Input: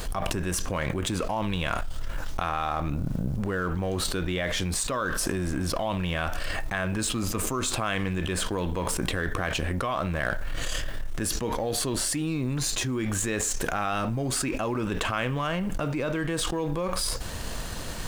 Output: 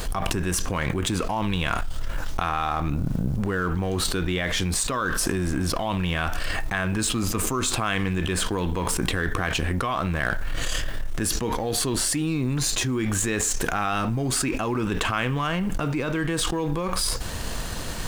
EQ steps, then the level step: dynamic bell 580 Hz, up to -7 dB, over -47 dBFS, Q 4.3; +3.5 dB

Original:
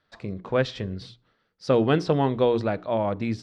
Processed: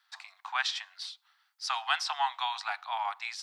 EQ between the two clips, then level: steep high-pass 760 Hz 96 dB/octave; treble shelf 4.3 kHz +11.5 dB; 0.0 dB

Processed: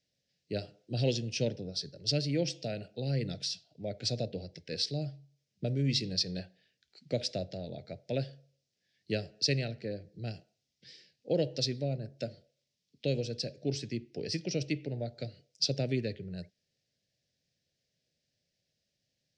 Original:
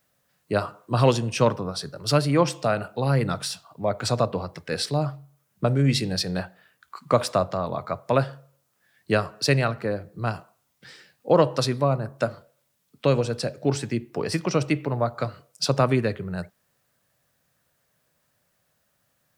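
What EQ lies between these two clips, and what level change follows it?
Butterworth band-stop 1.1 kHz, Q 0.7; four-pole ladder low-pass 6 kHz, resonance 50%; 0.0 dB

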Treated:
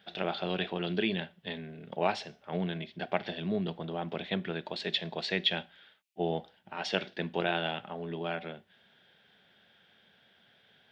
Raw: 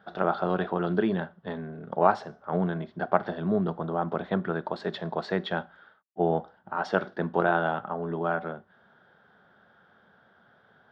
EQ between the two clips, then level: resonant high shelf 1.8 kHz +11.5 dB, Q 3; -5.5 dB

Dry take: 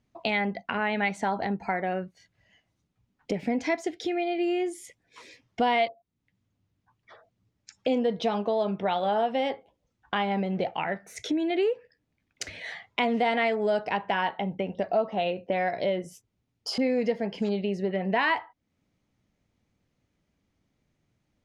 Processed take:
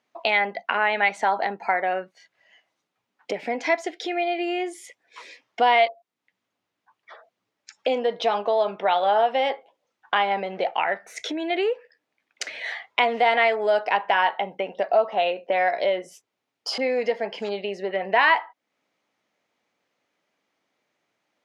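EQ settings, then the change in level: high-pass 580 Hz 12 dB/octave; treble shelf 6.1 kHz -10.5 dB; +8.0 dB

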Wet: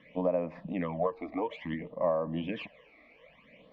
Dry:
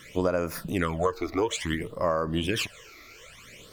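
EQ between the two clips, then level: high-pass 170 Hz 6 dB/octave; low-pass 2.2 kHz 24 dB/octave; static phaser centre 380 Hz, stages 6; 0.0 dB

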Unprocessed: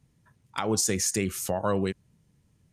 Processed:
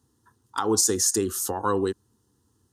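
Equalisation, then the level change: high-pass 100 Hz; static phaser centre 610 Hz, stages 6; +6.0 dB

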